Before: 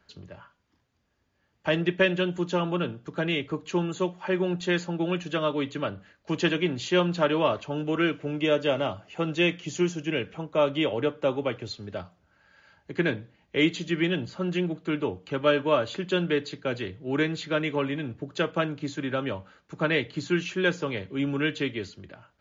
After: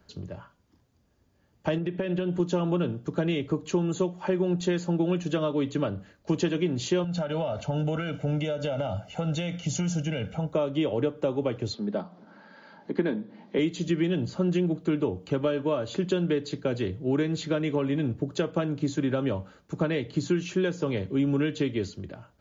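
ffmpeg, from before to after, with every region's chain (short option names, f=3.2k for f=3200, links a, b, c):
-filter_complex "[0:a]asettb=1/sr,asplit=3[a][b][c];[a]atrim=end=1.784[d];[b]atrim=start=1.78:end=2.4,asetpts=PTS-STARTPTS,afade=t=in:d=0.004:c=qsin,afade=t=out:st=0.616:d=0.004:c=qsin,lowpass=3.5k,acompressor=threshold=-29dB:ratio=10:attack=3.2:release=140:knee=1:detection=peak[e];[c]atrim=start=2.396[f];[d][e]acrossfade=d=0.004:c1=hsin:c2=qsin[g];[g][f]acrossfade=d=0.004:c1=qsin:c2=hsin,asettb=1/sr,asplit=3[h][i][j];[h]atrim=end=7.044[k];[i]atrim=start=7.04:end=10.53,asetpts=PTS-STARTPTS,afade=t=in:d=0.004:c=qsin,afade=t=out:st=3.486:d=0.004:c=qsin,aecho=1:1:1.4:0.82,atrim=end_sample=153909,acompressor=threshold=-29dB:ratio=10:attack=3.2:release=140:knee=1:detection=peak[l];[j]atrim=start=10.526[m];[k][l]acrossfade=d=0.004:c1=hsin:c2=qsin[n];[n][m]acrossfade=d=0.004:c1=qsin:c2=hsin,asettb=1/sr,asplit=3[o][p][q];[o]atrim=end=11.744[r];[p]atrim=start=11.74:end=13.59,asetpts=PTS-STARTPTS,afade=t=in:d=0.004:c=qsin,afade=t=out:st=1.846:d=0.004:c=qsin,acompressor=mode=upward:threshold=-42dB:ratio=2.5:attack=3.2:release=140:knee=2.83:detection=peak,highpass=f=200:w=0.5412,highpass=f=200:w=1.3066,equalizer=f=210:t=q:w=4:g=9,equalizer=f=930:t=q:w=4:g=5,equalizer=f=2.7k:t=q:w=4:g=-7,lowpass=f=4.5k:w=0.5412,lowpass=f=4.5k:w=1.3066[s];[q]atrim=start=13.586[t];[r][s]acrossfade=d=0.004:c1=hsin:c2=qsin[u];[u][t]acrossfade=d=0.004:c1=qsin:c2=hsin,acompressor=threshold=-28dB:ratio=6,equalizer=f=2.1k:w=0.46:g=-10.5,volume=8dB"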